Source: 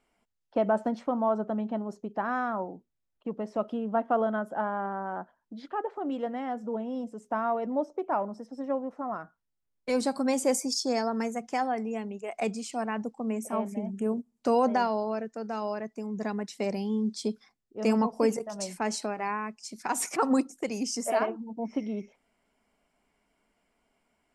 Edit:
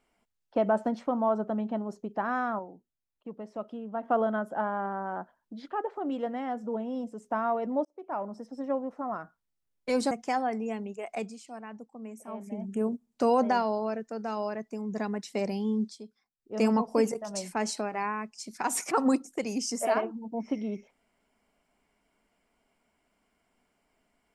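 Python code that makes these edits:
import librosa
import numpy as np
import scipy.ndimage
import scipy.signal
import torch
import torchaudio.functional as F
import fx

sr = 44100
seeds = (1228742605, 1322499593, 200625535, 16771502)

y = fx.edit(x, sr, fx.clip_gain(start_s=2.59, length_s=1.44, db=-7.0),
    fx.fade_in_span(start_s=7.85, length_s=0.56),
    fx.cut(start_s=10.11, length_s=1.25),
    fx.fade_down_up(start_s=12.18, length_s=1.84, db=-11.0, fade_s=0.47),
    fx.fade_down_up(start_s=17.04, length_s=0.75, db=-15.0, fade_s=0.17, curve='qsin'), tone=tone)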